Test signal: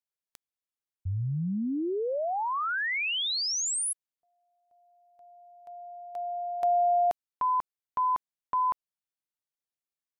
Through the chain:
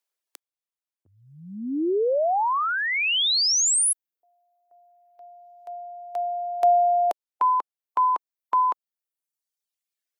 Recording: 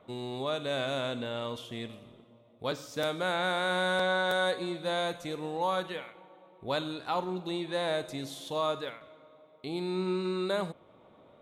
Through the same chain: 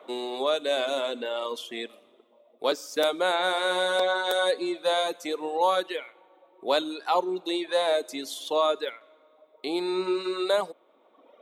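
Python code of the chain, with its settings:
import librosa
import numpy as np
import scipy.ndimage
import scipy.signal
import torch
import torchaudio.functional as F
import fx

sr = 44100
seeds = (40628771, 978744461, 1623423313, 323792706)

y = scipy.signal.sosfilt(scipy.signal.butter(4, 310.0, 'highpass', fs=sr, output='sos'), x)
y = fx.dereverb_blind(y, sr, rt60_s=1.4)
y = fx.dynamic_eq(y, sr, hz=1700.0, q=1.1, threshold_db=-45.0, ratio=4.0, max_db=-5)
y = F.gain(torch.from_numpy(y), 9.0).numpy()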